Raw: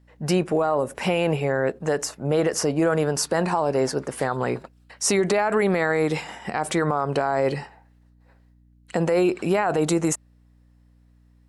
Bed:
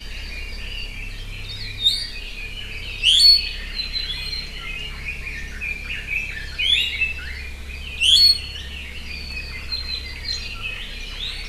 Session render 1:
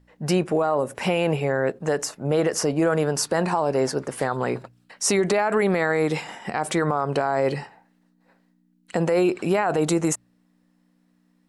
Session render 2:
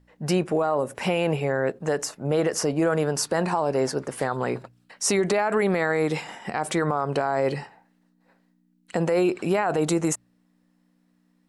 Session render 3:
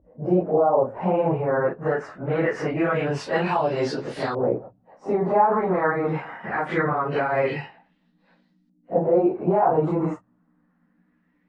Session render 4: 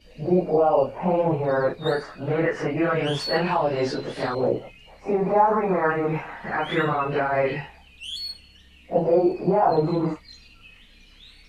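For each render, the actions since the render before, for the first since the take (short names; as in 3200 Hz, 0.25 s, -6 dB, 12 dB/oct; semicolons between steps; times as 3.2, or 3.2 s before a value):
de-hum 60 Hz, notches 2
gain -1.5 dB
phase scrambler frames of 0.1 s; LFO low-pass saw up 0.23 Hz 550–4600 Hz
add bed -20 dB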